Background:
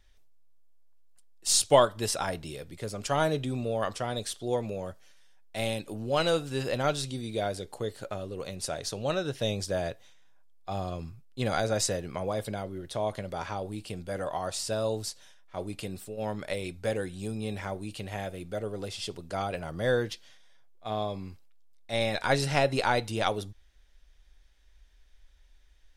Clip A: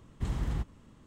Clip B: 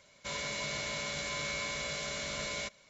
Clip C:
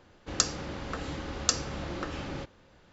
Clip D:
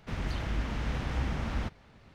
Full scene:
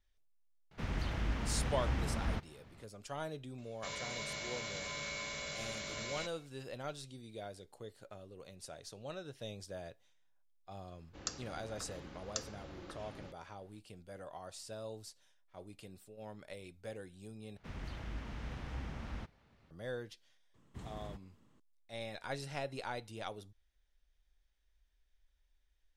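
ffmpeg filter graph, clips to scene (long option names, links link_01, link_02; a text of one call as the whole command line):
ffmpeg -i bed.wav -i cue0.wav -i cue1.wav -i cue2.wav -i cue3.wav -filter_complex "[4:a]asplit=2[link_01][link_02];[0:a]volume=-15.5dB[link_03];[1:a]highpass=frequency=130:poles=1[link_04];[link_03]asplit=2[link_05][link_06];[link_05]atrim=end=17.574[link_07];[link_02]atrim=end=2.14,asetpts=PTS-STARTPTS,volume=-11dB[link_08];[link_06]atrim=start=19.706[link_09];[link_01]atrim=end=2.14,asetpts=PTS-STARTPTS,volume=-3.5dB,afade=type=in:duration=0.004:curve=hsin,afade=type=out:start_time=2.136:duration=0.004:curve=hsin,adelay=710[link_10];[2:a]atrim=end=2.89,asetpts=PTS-STARTPTS,volume=-5.5dB,afade=type=in:duration=0.004:curve=hsin,afade=type=out:start_time=2.886:duration=0.004:curve=hsin,adelay=3580[link_11];[3:a]atrim=end=2.92,asetpts=PTS-STARTPTS,volume=-14.5dB,afade=type=in:duration=0.004:curve=hsin,afade=type=out:start_time=2.916:duration=0.004:curve=hsin,adelay=10870[link_12];[link_04]atrim=end=1.06,asetpts=PTS-STARTPTS,volume=-10.5dB,afade=type=in:duration=0.004:curve=hsin,afade=type=out:start_time=1.056:duration=0.004:curve=hsin,adelay=20540[link_13];[link_07][link_08]acrossfade=duration=0.004:curve1=hsin:curve2=hsin[link_14];[link_14][link_09]acrossfade=duration=0.004:curve1=hsin:curve2=hsin[link_15];[link_15][link_10][link_11][link_12][link_13]amix=inputs=5:normalize=0" out.wav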